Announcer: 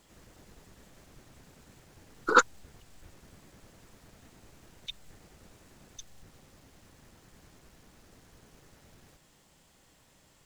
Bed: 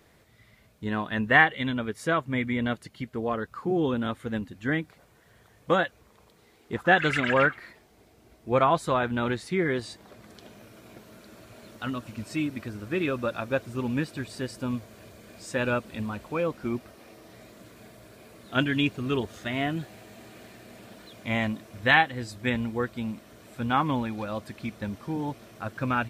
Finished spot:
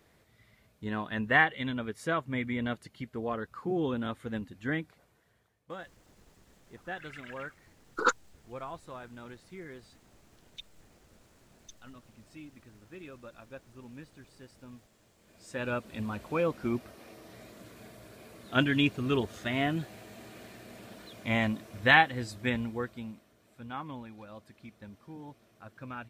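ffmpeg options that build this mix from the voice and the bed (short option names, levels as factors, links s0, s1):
-filter_complex "[0:a]adelay=5700,volume=0.531[s0];[1:a]volume=4.73,afade=t=out:st=4.79:d=0.8:silence=0.188365,afade=t=in:st=15.16:d=1.15:silence=0.11885,afade=t=out:st=22.18:d=1.15:silence=0.199526[s1];[s0][s1]amix=inputs=2:normalize=0"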